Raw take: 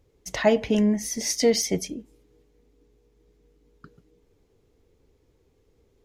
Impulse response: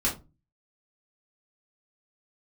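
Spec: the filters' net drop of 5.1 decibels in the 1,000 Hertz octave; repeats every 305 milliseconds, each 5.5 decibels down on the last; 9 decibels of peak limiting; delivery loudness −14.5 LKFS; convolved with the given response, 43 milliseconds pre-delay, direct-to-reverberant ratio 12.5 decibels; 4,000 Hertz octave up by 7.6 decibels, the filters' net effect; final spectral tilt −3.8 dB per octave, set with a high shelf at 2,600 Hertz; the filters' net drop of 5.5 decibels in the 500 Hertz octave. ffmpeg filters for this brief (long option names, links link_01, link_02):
-filter_complex "[0:a]equalizer=frequency=500:width_type=o:gain=-5.5,equalizer=frequency=1000:width_type=o:gain=-5.5,highshelf=frequency=2600:gain=7.5,equalizer=frequency=4000:width_type=o:gain=3,alimiter=limit=-15.5dB:level=0:latency=1,aecho=1:1:305|610|915|1220|1525|1830|2135:0.531|0.281|0.149|0.079|0.0419|0.0222|0.0118,asplit=2[link_01][link_02];[1:a]atrim=start_sample=2205,adelay=43[link_03];[link_02][link_03]afir=irnorm=-1:irlink=0,volume=-21.5dB[link_04];[link_01][link_04]amix=inputs=2:normalize=0,volume=9.5dB"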